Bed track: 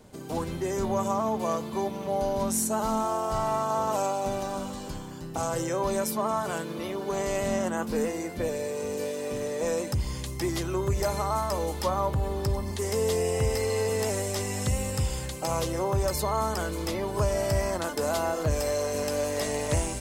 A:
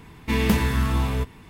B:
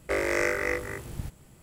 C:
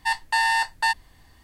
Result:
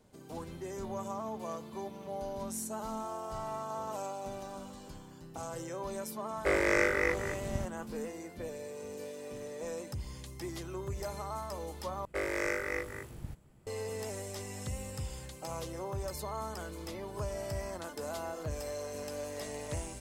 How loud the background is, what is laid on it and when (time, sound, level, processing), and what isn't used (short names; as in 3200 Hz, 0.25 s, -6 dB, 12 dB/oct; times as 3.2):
bed track -11.5 dB
6.36 add B -1 dB + high shelf 9300 Hz -9 dB
12.05 replace with B -7 dB + mismatched tape noise reduction decoder only
not used: A, C